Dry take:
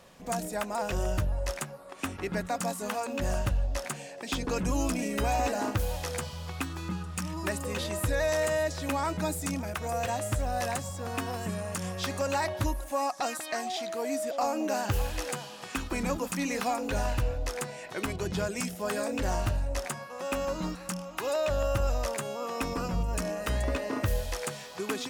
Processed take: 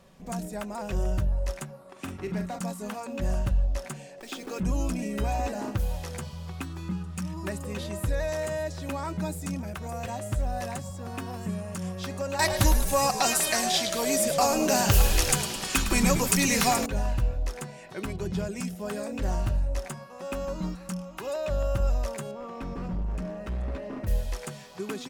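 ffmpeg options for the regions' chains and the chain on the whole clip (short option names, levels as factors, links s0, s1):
-filter_complex "[0:a]asettb=1/sr,asplit=3[s0][s1][s2];[s0]atrim=end=1.704[s3];[s1]atrim=start=1.7:end=2.59,asetpts=PTS-STARTPTS,afade=t=in:d=0.004:c=qsin,afade=t=out:st=0.886:d=0.004:c=qsin,asplit=2[s4][s5];[s5]adelay=44,volume=0.355[s6];[s4][s6]amix=inputs=2:normalize=0,atrim=end_sample=39249,volume=21.1,asoftclip=hard,volume=0.0473,highpass=68[s7];[s2]atrim=start=2.586[s8];[s3][s7]acrossfade=d=0.004:c1=hsin:c2=qsin[s9];[s9][s8]acrossfade=d=0.004:c1=qsin:c2=hsin,asettb=1/sr,asplit=3[s10][s11][s12];[s10]atrim=end=4.204[s13];[s11]atrim=start=4.2:end=4.6,asetpts=PTS-STARTPTS,afade=t=in:d=0.004:c=qsin,afade=t=out:st=0.396:d=0.004:c=qsin,highpass=f=280:w=0.5412,highpass=f=280:w=1.3066,bandreject=f=1000:w=7.4,acrusher=bits=8:dc=4:mix=0:aa=0.000001[s14];[s12]atrim=start=4.596[s15];[s13][s14]acrossfade=d=0.004:c1=hsin:c2=qsin[s16];[s16][s15]acrossfade=d=0.004:c1=qsin:c2=hsin,asettb=1/sr,asplit=3[s17][s18][s19];[s17]atrim=end=12.394[s20];[s18]atrim=start=12.39:end=16.86,asetpts=PTS-STARTPTS,afade=t=in:d=0.004:c=qsin,afade=t=out:st=4.466:d=0.004:c=qsin,equalizer=f=16000:t=o:w=2.6:g=14,asplit=8[s21][s22][s23][s24][s25][s26][s27][s28];[s22]adelay=107,afreqshift=-62,volume=0.282[s29];[s23]adelay=214,afreqshift=-124,volume=0.17[s30];[s24]adelay=321,afreqshift=-186,volume=0.101[s31];[s25]adelay=428,afreqshift=-248,volume=0.061[s32];[s26]adelay=535,afreqshift=-310,volume=0.0367[s33];[s27]adelay=642,afreqshift=-372,volume=0.0219[s34];[s28]adelay=749,afreqshift=-434,volume=0.0132[s35];[s21][s29][s30][s31][s32][s33][s34][s35]amix=inputs=8:normalize=0,atrim=end_sample=197127,acontrast=46[s36];[s19]atrim=start=16.856[s37];[s20][s36]acrossfade=d=0.004:c1=hsin:c2=qsin[s38];[s38][s37]acrossfade=d=0.004:c1=qsin:c2=hsin,asettb=1/sr,asplit=3[s39][s40][s41];[s39]atrim=end=22.314[s42];[s40]atrim=start=22.31:end=24.07,asetpts=PTS-STARTPTS,afade=t=in:d=0.004:c=qsin,afade=t=out:st=1.756:d=0.004:c=qsin,lowpass=f=1700:p=1,volume=33.5,asoftclip=hard,volume=0.0299[s43];[s41]atrim=start=24.066[s44];[s42][s43]acrossfade=d=0.004:c1=hsin:c2=qsin[s45];[s45][s44]acrossfade=d=0.004:c1=qsin:c2=hsin,lowshelf=f=300:g=9.5,aecho=1:1:5.2:0.31,volume=0.531"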